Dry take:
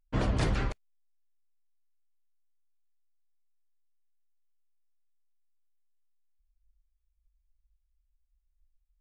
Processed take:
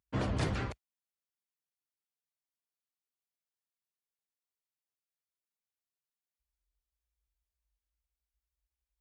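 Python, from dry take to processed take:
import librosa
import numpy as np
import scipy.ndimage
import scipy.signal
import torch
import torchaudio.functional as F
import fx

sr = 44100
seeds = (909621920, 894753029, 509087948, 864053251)

y = scipy.signal.sosfilt(scipy.signal.butter(4, 60.0, 'highpass', fs=sr, output='sos'), x)
y = F.gain(torch.from_numpy(y), -3.0).numpy()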